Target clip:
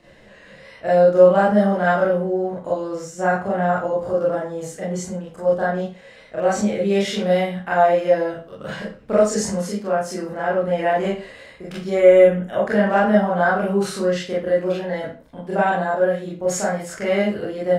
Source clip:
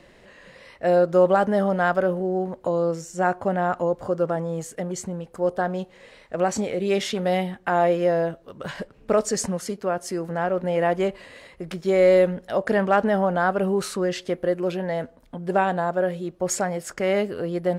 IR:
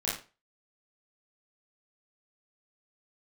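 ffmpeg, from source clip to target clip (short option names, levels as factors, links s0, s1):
-filter_complex "[0:a]asettb=1/sr,asplit=3[s0][s1][s2];[s0]atrim=end=11.954[s3];[s1]atrim=start=11.95:end=12.64,asetpts=PTS-STARTPTS,afade=t=in:d=0.004:c=qsin,afade=t=out:st=0.686:d=0.004:c=qsin,asuperstop=centerf=4600:order=8:qfactor=2.1[s4];[s2]atrim=start=12.636[s5];[s3][s4]acrossfade=d=0.004:c1=hsin:c2=qsin[s6];[s6][s5]acrossfade=d=0.004:c1=qsin:c2=hsin[s7];[1:a]atrim=start_sample=2205,asetrate=42336,aresample=44100[s8];[s7][s8]afir=irnorm=-1:irlink=0,volume=0.631"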